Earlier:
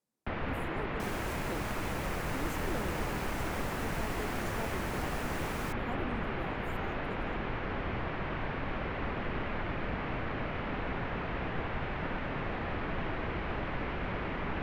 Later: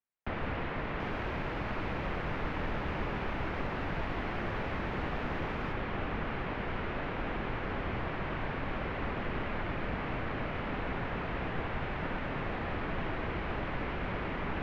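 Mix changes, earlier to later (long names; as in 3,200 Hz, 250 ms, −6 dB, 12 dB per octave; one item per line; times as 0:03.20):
speech: muted
second sound: add high-frequency loss of the air 280 metres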